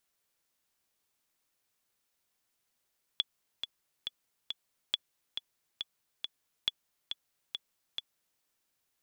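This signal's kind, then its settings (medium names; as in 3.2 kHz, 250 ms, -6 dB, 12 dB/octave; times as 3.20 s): metronome 138 bpm, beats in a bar 4, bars 3, 3.41 kHz, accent 7.5 dB -14.5 dBFS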